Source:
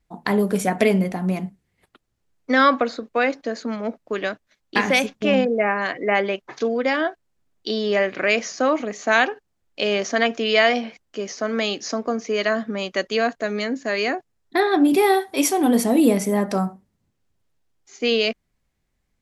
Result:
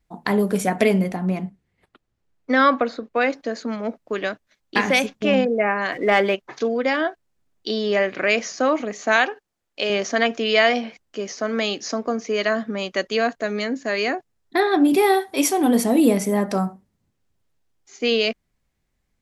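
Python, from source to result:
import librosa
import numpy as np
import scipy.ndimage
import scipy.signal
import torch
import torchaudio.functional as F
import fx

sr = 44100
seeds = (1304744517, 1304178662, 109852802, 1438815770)

y = fx.lowpass(x, sr, hz=3600.0, slope=6, at=(1.16, 3.21))
y = fx.leveller(y, sr, passes=1, at=(5.92, 6.35))
y = fx.low_shelf(y, sr, hz=200.0, db=-11.5, at=(9.16, 9.9))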